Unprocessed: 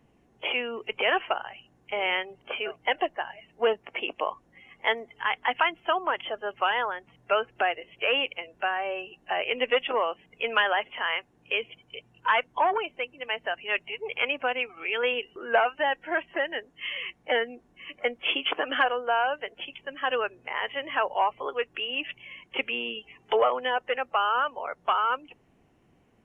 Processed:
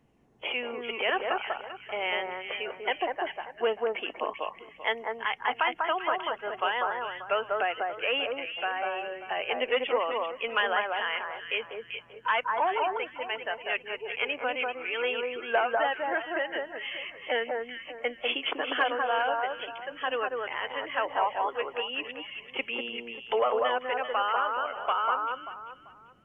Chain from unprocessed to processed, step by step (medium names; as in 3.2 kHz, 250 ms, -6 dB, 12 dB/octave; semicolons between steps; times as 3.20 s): echo whose repeats swap between lows and highs 195 ms, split 1.6 kHz, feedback 51%, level -2 dB; trim -3.5 dB